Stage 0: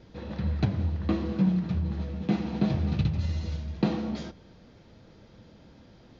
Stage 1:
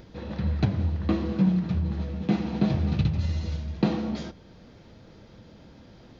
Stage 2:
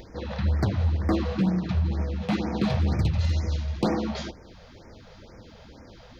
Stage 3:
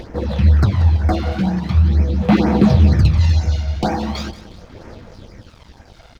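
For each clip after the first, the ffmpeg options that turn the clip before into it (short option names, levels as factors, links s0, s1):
-af "acompressor=mode=upward:threshold=0.00447:ratio=2.5,volume=1.26"
-af "equalizer=f=160:t=o:w=1.3:g=-8.5,volume=15,asoftclip=hard,volume=0.0668,afftfilt=real='re*(1-between(b*sr/1024,270*pow(3600/270,0.5+0.5*sin(2*PI*2.1*pts/sr))/1.41,270*pow(3600/270,0.5+0.5*sin(2*PI*2.1*pts/sr))*1.41))':imag='im*(1-between(b*sr/1024,270*pow(3600/270,0.5+0.5*sin(2*PI*2.1*pts/sr))/1.41,270*pow(3600/270,0.5+0.5*sin(2*PI*2.1*pts/sr))*1.41))':win_size=1024:overlap=0.75,volume=2"
-af "aphaser=in_gain=1:out_gain=1:delay=1.4:decay=0.58:speed=0.41:type=sinusoidal,aecho=1:1:182|364|546|728:0.2|0.0738|0.0273|0.0101,aeval=exprs='sgn(val(0))*max(abs(val(0))-0.00355,0)':c=same,volume=2"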